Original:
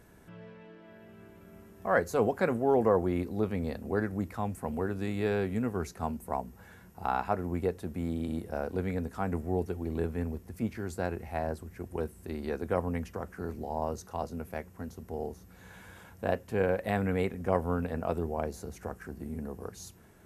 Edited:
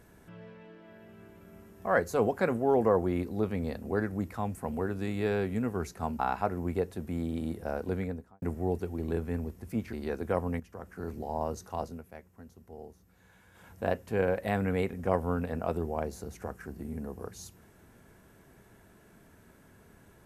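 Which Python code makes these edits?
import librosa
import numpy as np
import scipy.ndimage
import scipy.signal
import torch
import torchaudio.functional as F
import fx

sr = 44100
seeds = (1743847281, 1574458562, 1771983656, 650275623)

y = fx.studio_fade_out(x, sr, start_s=8.81, length_s=0.48)
y = fx.edit(y, sr, fx.cut(start_s=6.19, length_s=0.87),
    fx.cut(start_s=10.8, length_s=1.54),
    fx.fade_in_from(start_s=13.01, length_s=0.52, floor_db=-13.5),
    fx.fade_down_up(start_s=14.26, length_s=1.86, db=-10.0, fade_s=0.19), tone=tone)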